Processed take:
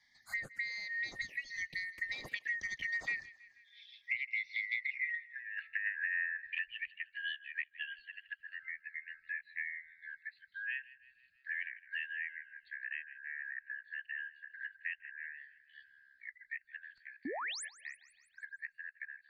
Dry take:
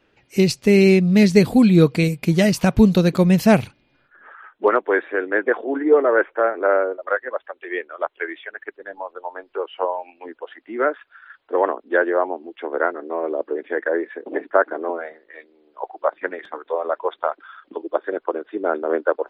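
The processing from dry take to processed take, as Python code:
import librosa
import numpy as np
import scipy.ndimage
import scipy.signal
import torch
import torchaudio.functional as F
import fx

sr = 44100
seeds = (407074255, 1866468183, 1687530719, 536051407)

y = fx.band_shuffle(x, sr, order='4123')
y = fx.doppler_pass(y, sr, speed_mps=39, closest_m=6.0, pass_at_s=5.27)
y = fx.env_phaser(y, sr, low_hz=460.0, high_hz=3200.0, full_db=-35.5)
y = fx.high_shelf(y, sr, hz=2200.0, db=-7.0)
y = fx.env_lowpass_down(y, sr, base_hz=2100.0, full_db=-39.0)
y = fx.over_compress(y, sr, threshold_db=-41.0, ratio=-0.5)
y = fx.spec_paint(y, sr, seeds[0], shape='rise', start_s=17.25, length_s=0.4, low_hz=240.0, high_hz=11000.0, level_db=-47.0)
y = fx.echo_thinned(y, sr, ms=160, feedback_pct=41, hz=830.0, wet_db=-20.5)
y = fx.band_squash(y, sr, depth_pct=70)
y = y * librosa.db_to_amplitude(6.5)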